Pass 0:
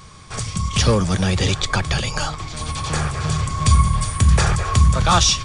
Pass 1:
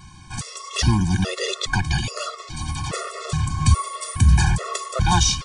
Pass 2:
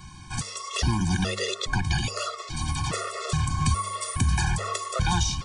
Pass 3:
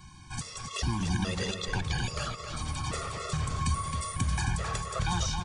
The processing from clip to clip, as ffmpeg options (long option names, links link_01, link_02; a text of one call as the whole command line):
ffmpeg -i in.wav -af "afftfilt=real='re*gt(sin(2*PI*1.2*pts/sr)*(1-2*mod(floor(b*sr/1024/360),2)),0)':imag='im*gt(sin(2*PI*1.2*pts/sr)*(1-2*mod(floor(b*sr/1024/360),2)),0)':win_size=1024:overlap=0.75" out.wav
ffmpeg -i in.wav -filter_complex "[0:a]bandreject=frequency=100.2:width_type=h:width=4,bandreject=frequency=200.4:width_type=h:width=4,bandreject=frequency=300.6:width_type=h:width=4,bandreject=frequency=400.8:width_type=h:width=4,bandreject=frequency=501:width_type=h:width=4,bandreject=frequency=601.2:width_type=h:width=4,bandreject=frequency=701.4:width_type=h:width=4,bandreject=frequency=801.6:width_type=h:width=4,bandreject=frequency=901.8:width_type=h:width=4,bandreject=frequency=1002:width_type=h:width=4,acrossover=split=370|1000[link_01][link_02][link_03];[link_01]acompressor=threshold=-22dB:ratio=4[link_04];[link_02]acompressor=threshold=-35dB:ratio=4[link_05];[link_03]acompressor=threshold=-28dB:ratio=4[link_06];[link_04][link_05][link_06]amix=inputs=3:normalize=0" out.wav
ffmpeg -i in.wav -filter_complex "[0:a]asplit=2[link_01][link_02];[link_02]adelay=266,lowpass=frequency=4900:poles=1,volume=-5.5dB,asplit=2[link_03][link_04];[link_04]adelay=266,lowpass=frequency=4900:poles=1,volume=0.34,asplit=2[link_05][link_06];[link_06]adelay=266,lowpass=frequency=4900:poles=1,volume=0.34,asplit=2[link_07][link_08];[link_08]adelay=266,lowpass=frequency=4900:poles=1,volume=0.34[link_09];[link_01][link_03][link_05][link_07][link_09]amix=inputs=5:normalize=0,volume=-6dB" out.wav